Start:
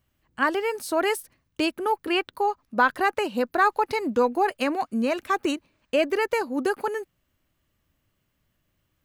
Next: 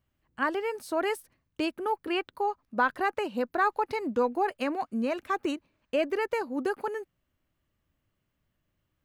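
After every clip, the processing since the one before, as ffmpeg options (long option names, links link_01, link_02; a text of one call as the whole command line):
ffmpeg -i in.wav -af "equalizer=frequency=14000:width_type=o:width=2.5:gain=-6,volume=-4.5dB" out.wav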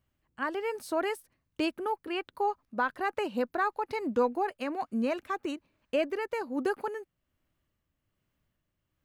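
ffmpeg -i in.wav -af "tremolo=f=1.2:d=0.42" out.wav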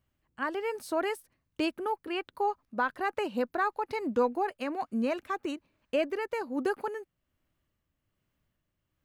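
ffmpeg -i in.wav -af anull out.wav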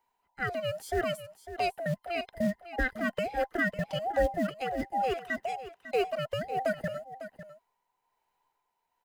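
ffmpeg -i in.wav -filter_complex "[0:a]afftfilt=real='real(if(between(b,1,1008),(2*floor((b-1)/48)+1)*48-b,b),0)':imag='imag(if(between(b,1,1008),(2*floor((b-1)/48)+1)*48-b,b),0)*if(between(b,1,1008),-1,1)':win_size=2048:overlap=0.75,acrossover=split=460|4800[link_01][link_02][link_03];[link_01]acrusher=bits=5:mode=log:mix=0:aa=0.000001[link_04];[link_04][link_02][link_03]amix=inputs=3:normalize=0,aecho=1:1:551:0.224" out.wav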